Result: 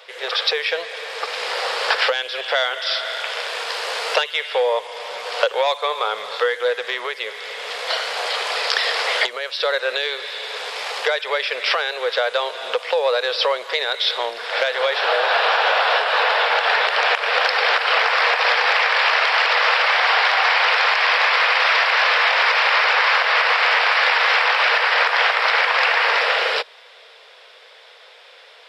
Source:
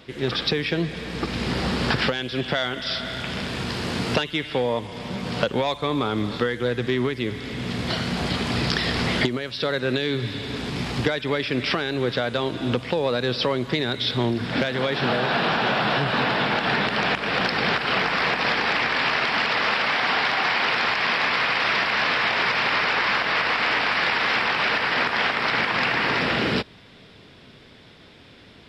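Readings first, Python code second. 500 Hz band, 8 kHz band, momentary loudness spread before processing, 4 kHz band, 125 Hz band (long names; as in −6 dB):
+3.5 dB, +5.0 dB, 7 LU, +5.0 dB, below −40 dB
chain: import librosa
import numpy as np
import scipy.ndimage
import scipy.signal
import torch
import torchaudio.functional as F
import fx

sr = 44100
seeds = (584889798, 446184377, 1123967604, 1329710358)

y = scipy.signal.sosfilt(scipy.signal.ellip(4, 1.0, 40, 480.0, 'highpass', fs=sr, output='sos'), x)
y = y * librosa.db_to_amplitude(6.0)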